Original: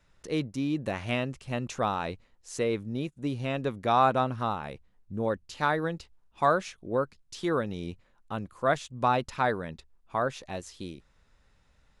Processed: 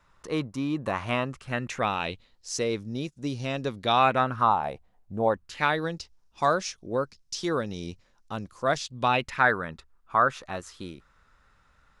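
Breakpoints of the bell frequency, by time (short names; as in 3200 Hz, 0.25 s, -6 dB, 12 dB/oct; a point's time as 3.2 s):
bell +13 dB
1.26 s 1100 Hz
2.54 s 5400 Hz
3.68 s 5400 Hz
4.64 s 720 Hz
5.26 s 720 Hz
5.91 s 5500 Hz
8.76 s 5500 Hz
9.56 s 1300 Hz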